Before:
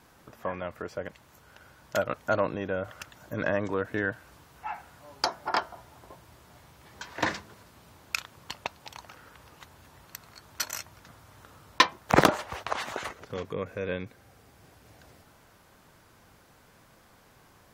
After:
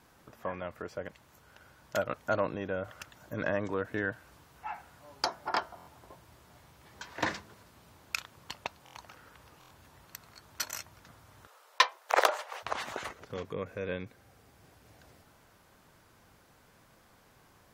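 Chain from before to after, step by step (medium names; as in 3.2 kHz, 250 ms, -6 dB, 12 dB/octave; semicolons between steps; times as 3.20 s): 11.47–12.63 s: steep high-pass 460 Hz 36 dB/octave; buffer glitch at 5.76/8.84/9.59 s, samples 1024, times 4; trim -3.5 dB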